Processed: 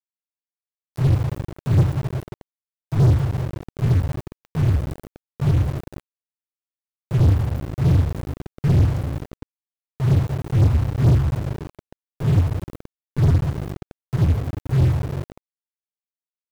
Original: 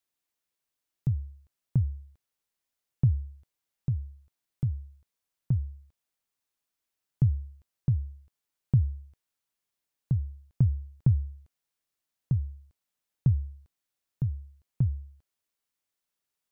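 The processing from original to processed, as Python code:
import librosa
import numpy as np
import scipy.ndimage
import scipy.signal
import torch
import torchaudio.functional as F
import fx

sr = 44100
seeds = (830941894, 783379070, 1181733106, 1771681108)

y = fx.phase_scramble(x, sr, seeds[0], window_ms=200)
y = fx.dereverb_blind(y, sr, rt60_s=1.6)
y = fx.quant_dither(y, sr, seeds[1], bits=12, dither='none')
y = fx.rev_double_slope(y, sr, seeds[2], early_s=0.23, late_s=2.6, knee_db=-20, drr_db=-1.5)
y = np.sign(y) * np.maximum(np.abs(y) - 10.0 ** (-39.5 / 20.0), 0.0)
y = fx.power_curve(y, sr, exponent=0.35)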